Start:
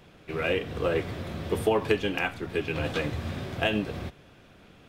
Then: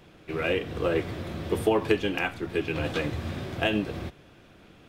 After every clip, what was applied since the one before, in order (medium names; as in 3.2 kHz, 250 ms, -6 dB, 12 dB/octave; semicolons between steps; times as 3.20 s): peaking EQ 330 Hz +5 dB 0.22 oct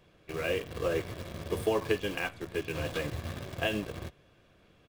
in parallel at -6 dB: bit crusher 5-bit; on the sum: comb 1.8 ms, depth 30%; trim -9 dB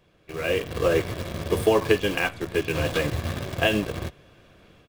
level rider gain up to 9 dB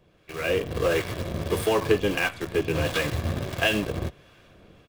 harmonic tremolo 1.5 Hz, depth 50%, crossover 840 Hz; in parallel at -9 dB: wavefolder -22.5 dBFS